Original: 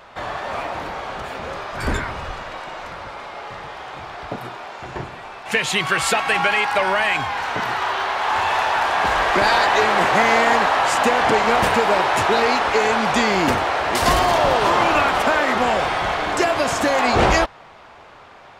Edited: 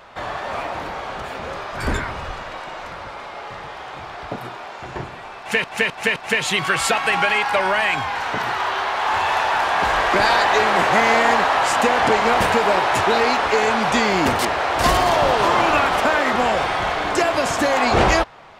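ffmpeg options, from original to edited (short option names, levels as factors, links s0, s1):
-filter_complex "[0:a]asplit=6[s0][s1][s2][s3][s4][s5];[s0]atrim=end=5.642[s6];[s1]atrim=start=5.378:end=5.642[s7];[s2]atrim=start=5.378:end=5.642[s8];[s3]atrim=start=5.378:end=13.612[s9];[s4]atrim=start=13.608:end=14.012,asetpts=PTS-STARTPTS,areverse[s10];[s5]atrim=start=14.008[s11];[s6][s7]acrossfade=d=0.004:c1=hsin:c2=hsin[s12];[s12][s8]acrossfade=d=0.004:c1=hsin:c2=hsin[s13];[s13][s9]acrossfade=d=0.004:c1=hsin:c2=hsin[s14];[s14][s10]acrossfade=d=0.004:c1=hsin:c2=hsin[s15];[s15][s11]acrossfade=d=0.004:c1=hsin:c2=hsin"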